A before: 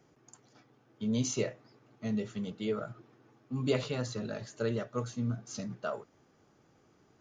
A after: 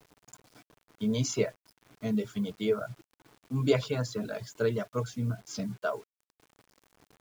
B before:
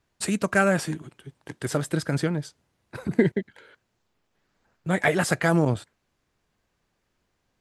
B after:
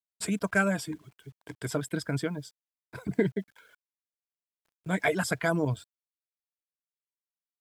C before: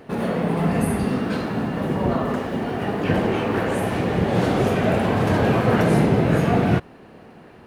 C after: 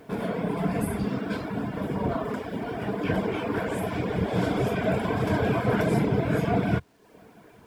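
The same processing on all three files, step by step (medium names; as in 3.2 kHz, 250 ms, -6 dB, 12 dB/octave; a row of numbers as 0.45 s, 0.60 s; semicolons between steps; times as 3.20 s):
rippled EQ curve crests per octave 1.7, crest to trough 7 dB; reverb removal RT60 0.64 s; bit crusher 10-bit; peak normalisation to -12 dBFS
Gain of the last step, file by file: +3.5 dB, -5.5 dB, -5.0 dB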